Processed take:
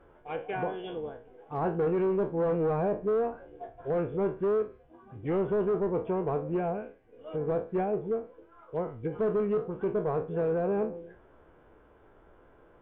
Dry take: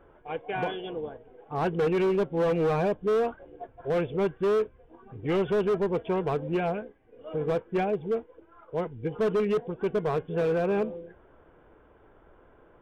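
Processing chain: spectral trails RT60 0.32 s; 4.62–5.27 notch comb 450 Hz; treble ducked by the level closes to 1200 Hz, closed at -25 dBFS; gain -2.5 dB

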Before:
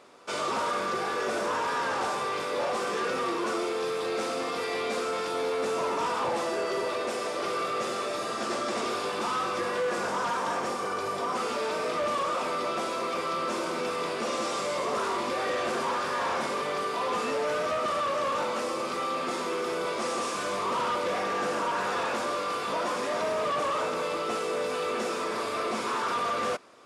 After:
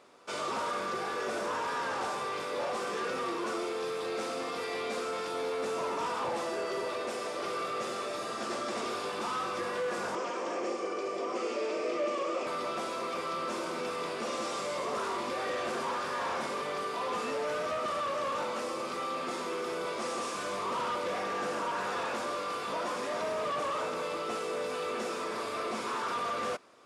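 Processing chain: 10.15–12.47 speaker cabinet 250–7600 Hz, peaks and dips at 340 Hz +10 dB, 540 Hz +5 dB, 920 Hz -7 dB, 1500 Hz -7 dB, 2400 Hz +3 dB, 3800 Hz -7 dB; gain -4.5 dB

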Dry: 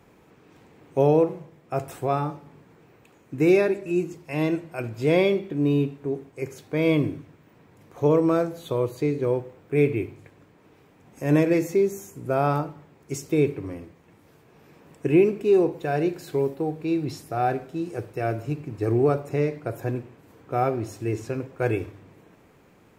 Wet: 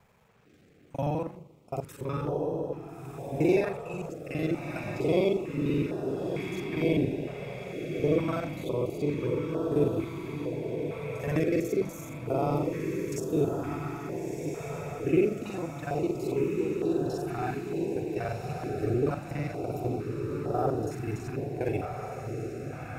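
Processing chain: local time reversal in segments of 41 ms; diffused feedback echo 1.354 s, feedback 65%, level -4 dB; stepped notch 2.2 Hz 310–2200 Hz; gain -5 dB

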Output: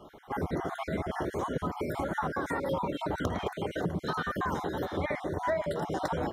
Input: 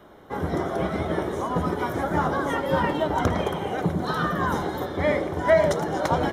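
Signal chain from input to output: random spectral dropouts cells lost 37%; compressor 4:1, threshold -29 dBFS, peak gain reduction 13.5 dB

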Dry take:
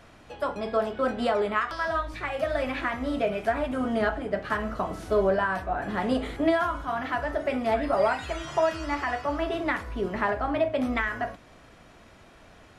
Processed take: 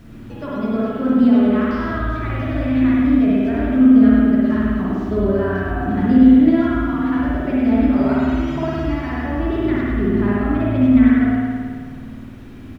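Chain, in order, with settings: LPF 6700 Hz 24 dB/oct; resonant low shelf 400 Hz +13.5 dB, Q 1.5; in parallel at 0 dB: compressor 5:1, threshold -32 dBFS, peak gain reduction 21 dB; on the sum: bit-crush 9-bit; on a send: echo 0.1 s -5 dB; on the sum: spring tank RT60 1.8 s, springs 54 ms, chirp 65 ms, DRR -5 dB; gain -7.5 dB

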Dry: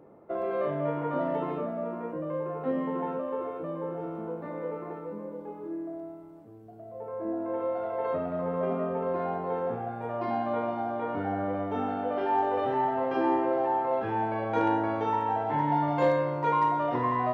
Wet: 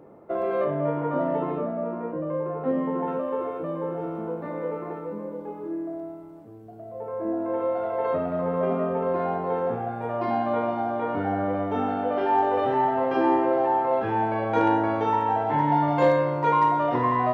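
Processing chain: 0.64–3.08 high shelf 2500 Hz -10 dB; gain +4.5 dB

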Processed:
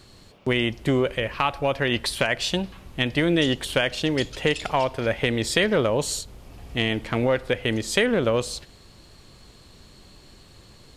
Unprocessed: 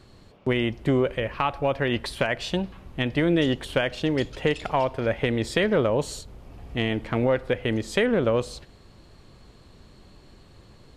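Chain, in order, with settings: high shelf 2800 Hz +10.5 dB

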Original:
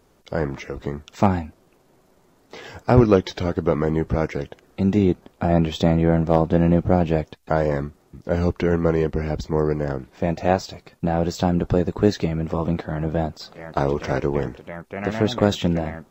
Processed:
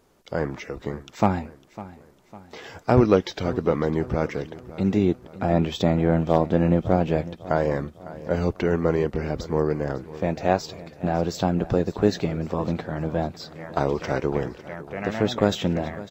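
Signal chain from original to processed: low shelf 140 Hz -4.5 dB; on a send: feedback echo 0.553 s, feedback 46%, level -17 dB; on the sum: gain -1.5 dB

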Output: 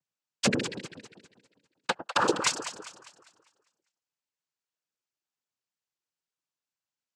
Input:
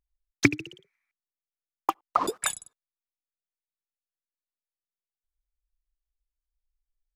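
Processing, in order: wavefolder -19 dBFS; echo with dull and thin repeats by turns 0.1 s, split 830 Hz, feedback 65%, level -7.5 dB; noise vocoder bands 8; gain +4.5 dB

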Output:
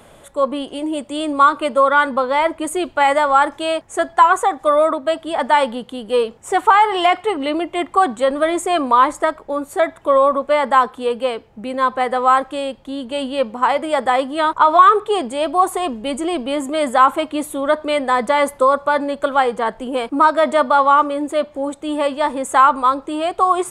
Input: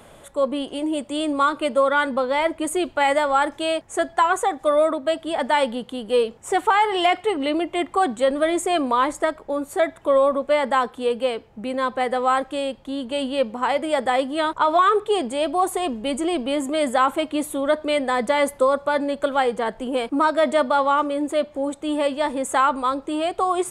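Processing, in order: dynamic EQ 1100 Hz, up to +7 dB, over -34 dBFS, Q 1.5; gain +1.5 dB

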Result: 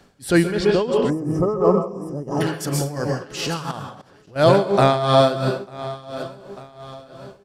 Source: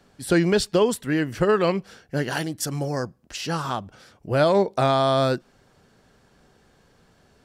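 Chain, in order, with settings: 0.51–2.41 air absorption 140 m; on a send: feedback echo 0.895 s, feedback 47%, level -16 dB; on the sum: plate-style reverb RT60 0.64 s, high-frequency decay 0.9×, pre-delay 0.115 s, DRR 3.5 dB; 1.1–2.41 spectral gain 1300–4900 Hz -25 dB; 3.71–4.36 level quantiser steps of 18 dB; transient shaper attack -7 dB, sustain -2 dB; tremolo 2.9 Hz, depth 76%; gain +6.5 dB

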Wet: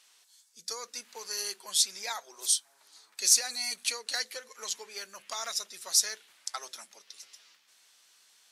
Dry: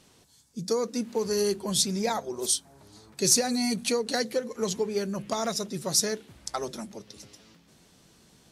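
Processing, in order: HPF 1400 Hz 12 dB/oct

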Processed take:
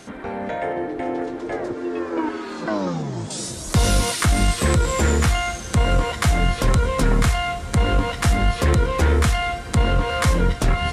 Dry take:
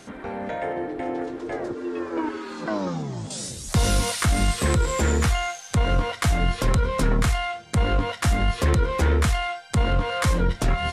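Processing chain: diffused feedback echo 1.07 s, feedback 63%, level -15 dB; gain +3 dB

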